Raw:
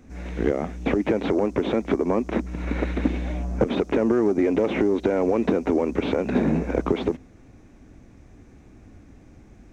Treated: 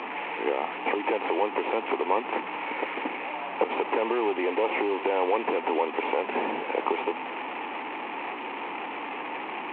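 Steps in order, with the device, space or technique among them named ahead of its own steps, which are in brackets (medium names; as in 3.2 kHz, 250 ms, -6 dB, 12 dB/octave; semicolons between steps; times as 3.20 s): digital answering machine (band-pass 320–3200 Hz; one-bit delta coder 16 kbps, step -27.5 dBFS; cabinet simulation 480–4200 Hz, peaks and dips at 620 Hz -6 dB, 890 Hz +10 dB, 1.5 kHz -8 dB, 2.5 kHz +5 dB, 3.6 kHz -6 dB); trim +1.5 dB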